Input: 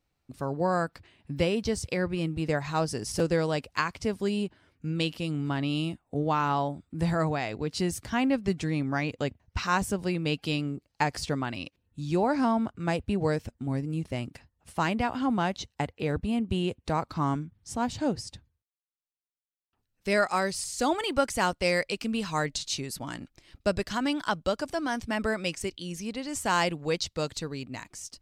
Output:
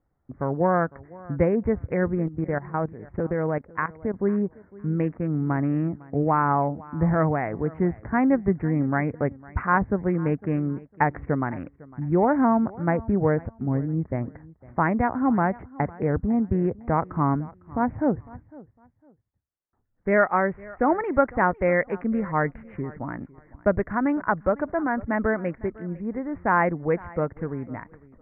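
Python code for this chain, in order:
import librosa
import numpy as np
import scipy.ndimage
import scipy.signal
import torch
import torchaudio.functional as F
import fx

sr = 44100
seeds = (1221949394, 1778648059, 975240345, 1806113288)

y = fx.wiener(x, sr, points=15)
y = scipy.signal.sosfilt(scipy.signal.butter(12, 2100.0, 'lowpass', fs=sr, output='sos'), y)
y = fx.level_steps(y, sr, step_db=15, at=(2.22, 4.14))
y = fx.echo_feedback(y, sr, ms=504, feedback_pct=24, wet_db=-21.5)
y = y * 10.0 ** (5.5 / 20.0)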